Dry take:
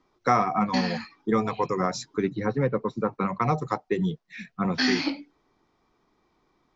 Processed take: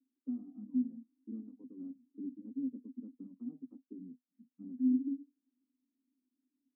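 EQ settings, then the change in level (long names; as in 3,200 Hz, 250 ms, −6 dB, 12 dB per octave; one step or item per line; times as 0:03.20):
flat-topped band-pass 260 Hz, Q 7
−2.0 dB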